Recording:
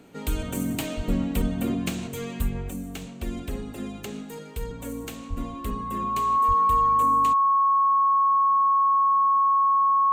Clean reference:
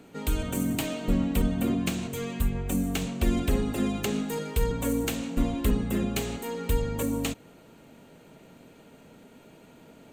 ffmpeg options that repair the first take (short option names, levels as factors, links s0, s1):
-filter_complex "[0:a]bandreject=f=1100:w=30,asplit=3[s0][s1][s2];[s0]afade=t=out:st=0.96:d=0.02[s3];[s1]highpass=f=140:w=0.5412,highpass=f=140:w=1.3066,afade=t=in:st=0.96:d=0.02,afade=t=out:st=1.08:d=0.02[s4];[s2]afade=t=in:st=1.08:d=0.02[s5];[s3][s4][s5]amix=inputs=3:normalize=0,asplit=3[s6][s7][s8];[s6]afade=t=out:st=5.29:d=0.02[s9];[s7]highpass=f=140:w=0.5412,highpass=f=140:w=1.3066,afade=t=in:st=5.29:d=0.02,afade=t=out:st=5.41:d=0.02[s10];[s8]afade=t=in:st=5.41:d=0.02[s11];[s9][s10][s11]amix=inputs=3:normalize=0,asplit=3[s12][s13][s14];[s12]afade=t=out:st=6.47:d=0.02[s15];[s13]highpass=f=140:w=0.5412,highpass=f=140:w=1.3066,afade=t=in:st=6.47:d=0.02,afade=t=out:st=6.59:d=0.02[s16];[s14]afade=t=in:st=6.59:d=0.02[s17];[s15][s16][s17]amix=inputs=3:normalize=0,asetnsamples=n=441:p=0,asendcmd='2.69 volume volume 7dB',volume=1"